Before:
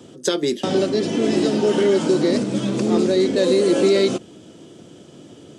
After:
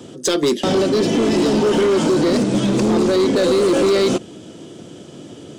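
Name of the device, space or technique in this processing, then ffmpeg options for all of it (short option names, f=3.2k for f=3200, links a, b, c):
limiter into clipper: -af "alimiter=limit=-12.5dB:level=0:latency=1:release=23,asoftclip=type=hard:threshold=-18dB,volume=6dB"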